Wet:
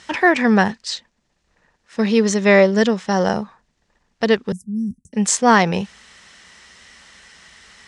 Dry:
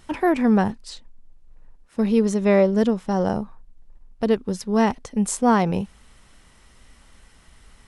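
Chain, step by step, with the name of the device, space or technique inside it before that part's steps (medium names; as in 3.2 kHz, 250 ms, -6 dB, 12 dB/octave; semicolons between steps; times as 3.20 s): car door speaker (cabinet simulation 110–7000 Hz, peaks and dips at 120 Hz -10 dB, 280 Hz -7 dB, 1.8 kHz +7 dB); treble shelf 2.2 kHz +11 dB; 4.52–5.13 s: inverse Chebyshev band-stop 620–4100 Hz, stop band 60 dB; trim +4 dB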